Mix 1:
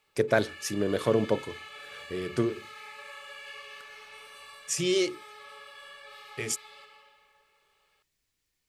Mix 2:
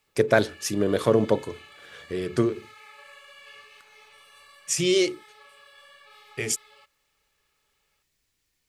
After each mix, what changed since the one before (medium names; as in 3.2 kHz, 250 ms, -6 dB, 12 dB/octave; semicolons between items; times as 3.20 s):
speech +4.5 dB; reverb: off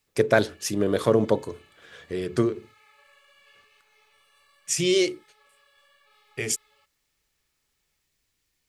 background -9.5 dB